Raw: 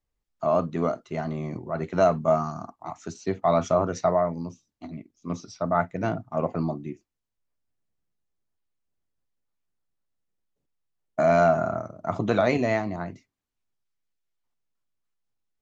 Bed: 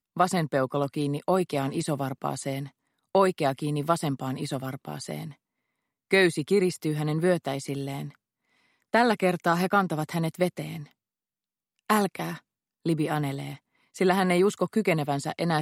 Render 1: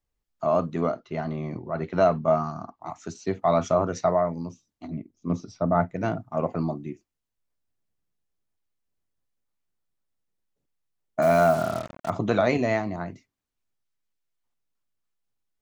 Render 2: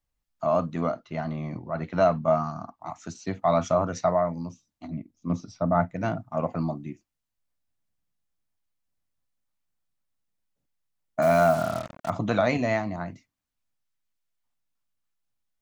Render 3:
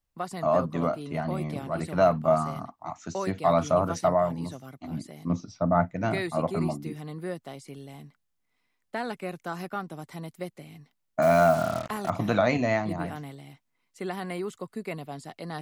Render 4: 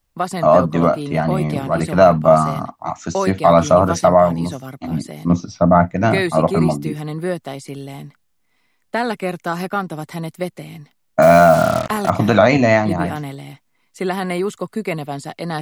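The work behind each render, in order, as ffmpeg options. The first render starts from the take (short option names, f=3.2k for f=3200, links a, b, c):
-filter_complex "[0:a]asettb=1/sr,asplit=3[a][b][c];[a]atrim=end=0.814[d];[b]atrim=start=0.81:end=2.82,asetpts=PTS-STARTPTS,afade=t=in:d=0.004:c=qsin,afade=t=out:st=2.006:d=0.004:c=qsin,lowpass=f=5.3k:w=0.5412,lowpass=f=5.3k:w=1.3066[e];[c]atrim=start=2.816[f];[d][e]acrossfade=d=0.004:c1=hsin:c2=qsin[g];[g][f]acrossfade=d=0.004:c1=qsin:c2=hsin,asettb=1/sr,asplit=3[h][i][j];[h]atrim=end=4.884[k];[i]atrim=start=4.88:end=5.94,asetpts=PTS-STARTPTS,afade=t=in:d=0.004:c=qsin,afade=t=out:st=1.056:d=0.004:c=qsin,tiltshelf=f=860:g=5.5[l];[j]atrim=start=5.936[m];[k][l]acrossfade=d=0.004:c1=hsin:c2=qsin[n];[n][m]acrossfade=d=0.004:c1=qsin:c2=hsin,asettb=1/sr,asplit=3[o][p][q];[o]atrim=end=11.224[r];[p]atrim=start=11.22:end=12.1,asetpts=PTS-STARTPTS,afade=t=in:d=0.004:c=qsin,afade=t=out:st=0.876:d=0.004:c=qsin,acrusher=bits=5:mix=0:aa=0.5[s];[q]atrim=start=12.096[t];[r][s]acrossfade=d=0.004:c1=hsin:c2=qsin[u];[u][t]acrossfade=d=0.004:c1=qsin:c2=hsin"
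-af "equalizer=f=400:w=3.7:g=-10"
-filter_complex "[1:a]volume=-11dB[a];[0:a][a]amix=inputs=2:normalize=0"
-af "volume=12dB,alimiter=limit=-1dB:level=0:latency=1"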